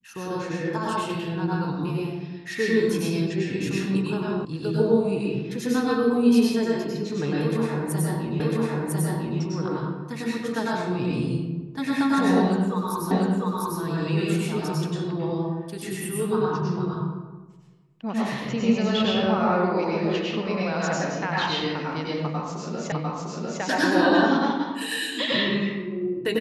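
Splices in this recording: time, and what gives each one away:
4.45 s: sound stops dead
8.40 s: repeat of the last 1 s
13.11 s: repeat of the last 0.7 s
22.92 s: repeat of the last 0.7 s

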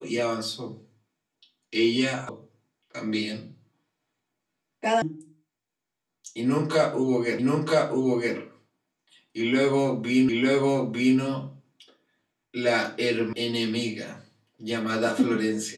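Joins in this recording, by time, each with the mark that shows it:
2.29 s: sound stops dead
5.02 s: sound stops dead
7.39 s: repeat of the last 0.97 s
10.29 s: repeat of the last 0.9 s
13.33 s: sound stops dead

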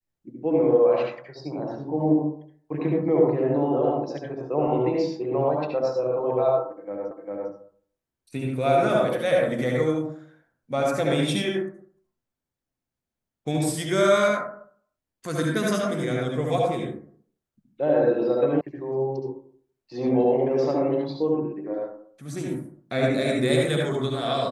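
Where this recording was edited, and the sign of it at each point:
7.11 s: repeat of the last 0.4 s
18.61 s: sound stops dead

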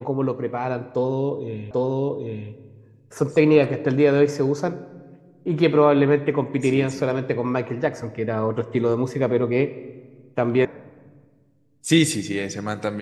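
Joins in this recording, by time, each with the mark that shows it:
1.71 s: repeat of the last 0.79 s
10.65 s: sound stops dead

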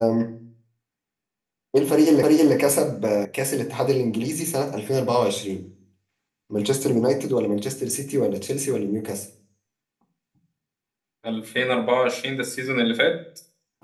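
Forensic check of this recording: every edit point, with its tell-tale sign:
2.23 s: repeat of the last 0.32 s
3.25 s: sound stops dead

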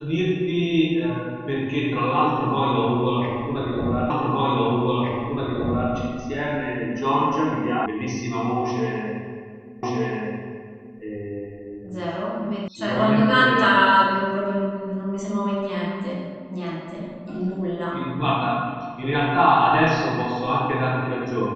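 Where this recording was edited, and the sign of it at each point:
4.10 s: repeat of the last 1.82 s
7.86 s: sound stops dead
9.83 s: repeat of the last 1.18 s
12.68 s: sound stops dead

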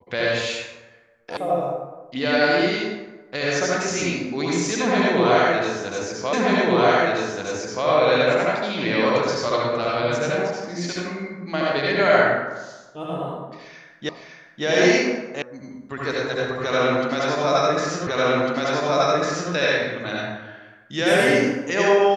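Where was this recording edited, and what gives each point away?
1.37 s: sound stops dead
6.33 s: repeat of the last 1.53 s
14.09 s: repeat of the last 0.56 s
15.42 s: sound stops dead
18.07 s: repeat of the last 1.45 s

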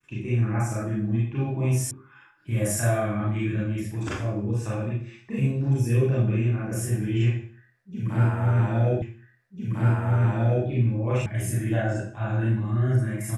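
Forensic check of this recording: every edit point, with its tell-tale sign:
1.91 s: sound stops dead
9.02 s: repeat of the last 1.65 s
11.26 s: sound stops dead

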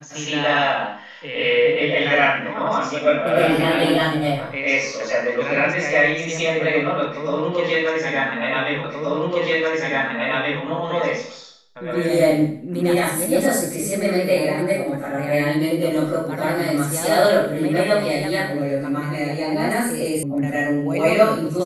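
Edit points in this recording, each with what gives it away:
8.84 s: repeat of the last 1.78 s
20.23 s: sound stops dead

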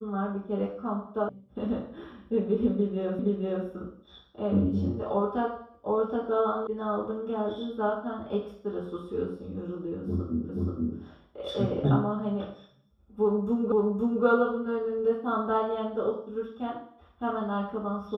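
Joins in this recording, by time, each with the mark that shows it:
1.29 s: sound stops dead
3.19 s: repeat of the last 0.47 s
6.67 s: sound stops dead
10.49 s: repeat of the last 0.48 s
13.72 s: repeat of the last 0.52 s

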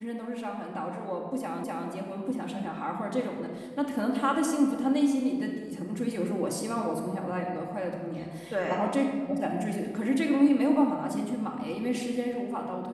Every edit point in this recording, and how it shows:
1.64 s: repeat of the last 0.25 s

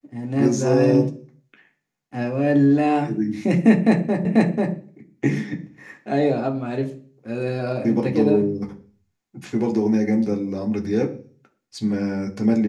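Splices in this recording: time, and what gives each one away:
4.25 s: repeat of the last 0.49 s

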